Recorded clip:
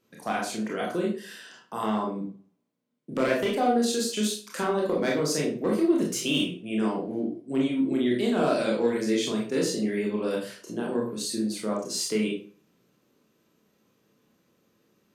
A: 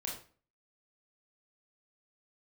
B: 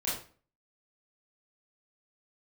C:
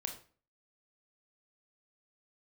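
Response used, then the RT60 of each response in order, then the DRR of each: A; 0.40 s, 0.40 s, 0.40 s; -2.5 dB, -9.0 dB, 3.5 dB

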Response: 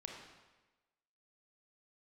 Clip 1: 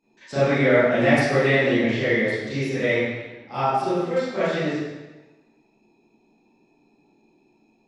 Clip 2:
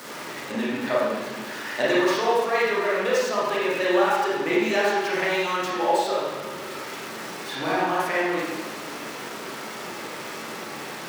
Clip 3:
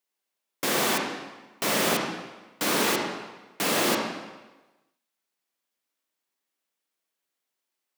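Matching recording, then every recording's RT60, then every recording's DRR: 3; 1.2 s, 1.2 s, 1.2 s; -16.0 dB, -7.5 dB, 0.0 dB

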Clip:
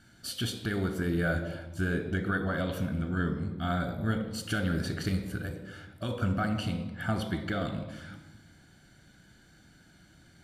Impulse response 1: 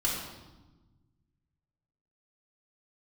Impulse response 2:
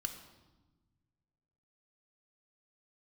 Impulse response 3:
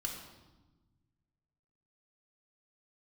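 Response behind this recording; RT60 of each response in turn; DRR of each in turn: 2; 1.2 s, 1.2 s, 1.2 s; -5.0 dB, 5.5 dB, 0.0 dB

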